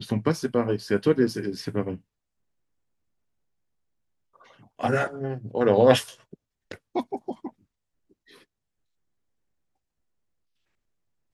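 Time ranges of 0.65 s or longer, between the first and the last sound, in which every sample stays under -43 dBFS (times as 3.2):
1.98–4.46
7.5–8.31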